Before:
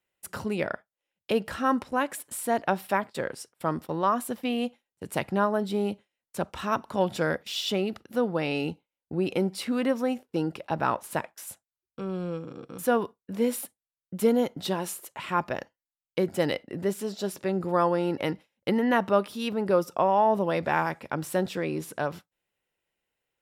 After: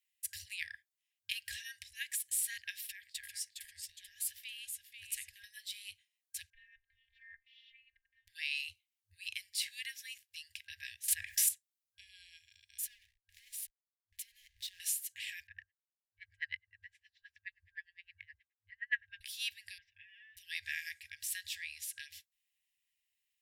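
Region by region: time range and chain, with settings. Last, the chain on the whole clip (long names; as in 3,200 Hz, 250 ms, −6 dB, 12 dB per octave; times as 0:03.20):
0:02.84–0:05.44: downward compressor, threshold −31 dBFS + delay with pitch and tempo change per echo 393 ms, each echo −1 semitone, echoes 2, each echo −6 dB
0:06.50–0:08.28: low-pass filter 1,500 Hz 24 dB per octave + frequency shifter +24 Hz + phases set to zero 261 Hz
0:11.08–0:11.49: tilt shelving filter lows +7 dB, about 850 Hz + envelope flattener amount 70%
0:12.84–0:14.80: mains-hum notches 60/120/180/240/300/360/420/480/540 Hz + downward compressor 10 to 1, threshold −36 dBFS + slack as between gear wheels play −42.5 dBFS
0:15.47–0:19.21: auto-filter low-pass sine 9.6 Hz 280–1,800 Hz + multiband upward and downward expander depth 40%
0:19.78–0:20.37: low-pass filter 2,000 Hz 24 dB per octave + comb filter 6.9 ms, depth 99%
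whole clip: guitar amp tone stack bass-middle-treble 6-0-2; brick-wall band-stop 100–1,600 Hz; tilt shelving filter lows −8.5 dB, about 710 Hz; level +8 dB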